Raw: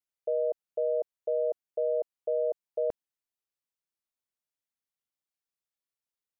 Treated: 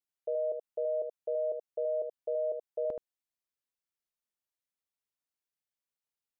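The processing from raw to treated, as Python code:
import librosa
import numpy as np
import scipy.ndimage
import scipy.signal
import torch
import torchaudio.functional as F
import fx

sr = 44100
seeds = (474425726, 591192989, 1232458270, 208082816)

y = x + 10.0 ** (-6.0 / 20.0) * np.pad(x, (int(76 * sr / 1000.0), 0))[:len(x)]
y = y * 10.0 ** (-4.0 / 20.0)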